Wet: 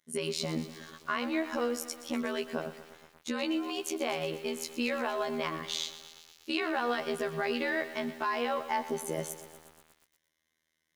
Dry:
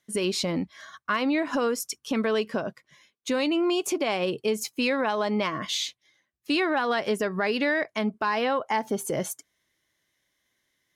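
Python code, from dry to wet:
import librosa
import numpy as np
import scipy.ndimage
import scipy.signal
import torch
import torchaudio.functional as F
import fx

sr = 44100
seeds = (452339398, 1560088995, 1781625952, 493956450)

y = fx.robotise(x, sr, hz=80.1)
y = fx.echo_crushed(y, sr, ms=120, feedback_pct=80, bits=7, wet_db=-14.0)
y = y * 10.0 ** (-4.0 / 20.0)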